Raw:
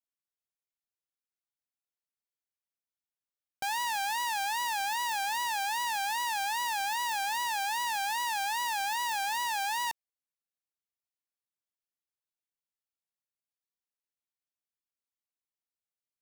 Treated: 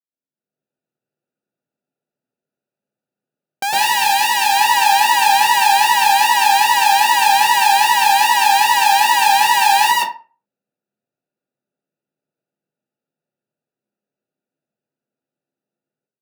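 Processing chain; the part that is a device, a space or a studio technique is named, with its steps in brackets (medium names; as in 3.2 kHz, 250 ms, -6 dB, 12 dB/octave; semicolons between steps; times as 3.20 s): local Wiener filter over 41 samples; far laptop microphone (reverberation RT60 0.35 s, pre-delay 103 ms, DRR -7 dB; high-pass 140 Hz 24 dB/octave; level rider gain up to 15 dB); 3.71–4.57 s: peaking EQ 1.1 kHz -5.5 dB 0.86 oct; trim +1.5 dB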